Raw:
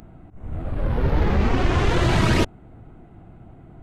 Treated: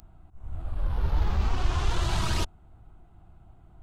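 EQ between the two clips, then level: graphic EQ 125/250/500/2000 Hz -8/-12/-12/-11 dB; -2.0 dB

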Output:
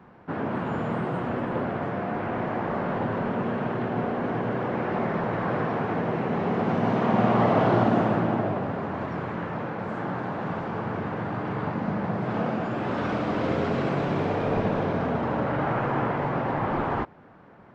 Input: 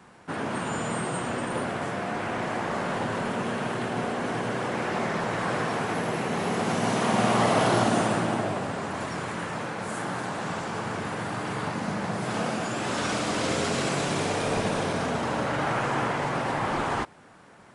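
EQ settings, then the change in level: tape spacing loss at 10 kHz 42 dB; +4.0 dB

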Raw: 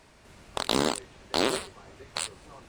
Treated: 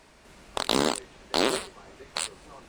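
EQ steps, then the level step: peaking EQ 100 Hz -12.5 dB 0.53 oct; +1.5 dB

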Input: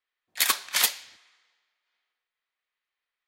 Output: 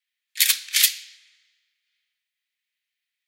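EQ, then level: inverse Chebyshev high-pass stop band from 590 Hz, stop band 60 dB; +5.5 dB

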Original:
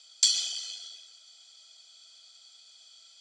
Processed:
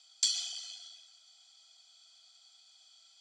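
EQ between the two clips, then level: resonant low shelf 590 Hz -8 dB, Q 3; band-stop 500 Hz, Q 12; -6.5 dB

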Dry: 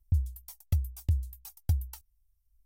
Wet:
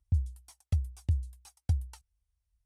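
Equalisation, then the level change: high-pass 56 Hz; Chebyshev low-pass 10 kHz, order 3; treble shelf 8.2 kHz -7 dB; 0.0 dB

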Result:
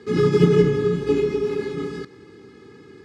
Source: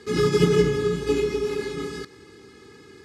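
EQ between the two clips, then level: high-pass 110 Hz 12 dB/octave; low-pass 2.9 kHz 6 dB/octave; bass shelf 350 Hz +6.5 dB; 0.0 dB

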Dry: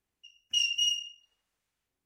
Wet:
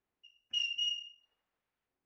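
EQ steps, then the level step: tape spacing loss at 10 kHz 33 dB; bass shelf 210 Hz -12 dB; +3.5 dB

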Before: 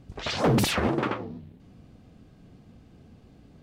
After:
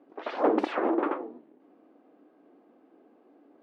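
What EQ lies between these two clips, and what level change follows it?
elliptic high-pass 300 Hz, stop band 70 dB; Bessel low-pass 880 Hz, order 2; peaking EQ 460 Hz -3 dB 1.5 oct; +5.0 dB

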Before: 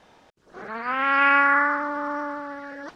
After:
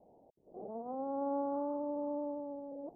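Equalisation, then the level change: steep low-pass 760 Hz 48 dB/octave; bass shelf 160 Hz -9 dB; -3.5 dB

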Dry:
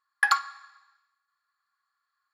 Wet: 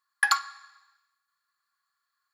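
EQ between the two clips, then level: treble shelf 3.3 kHz +8.5 dB; band-stop 1.3 kHz, Q 22; -2.5 dB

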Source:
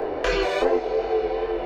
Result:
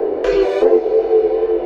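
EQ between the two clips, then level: peaking EQ 400 Hz +14.5 dB 1.2 oct; -3.0 dB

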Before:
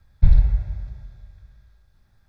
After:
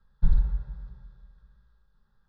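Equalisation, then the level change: distance through air 330 m; tilt shelf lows -4.5 dB, about 1.3 kHz; static phaser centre 450 Hz, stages 8; 0.0 dB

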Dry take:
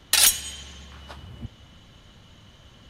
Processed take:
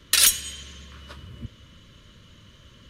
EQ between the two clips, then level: Butterworth band-stop 780 Hz, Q 2.1; 0.0 dB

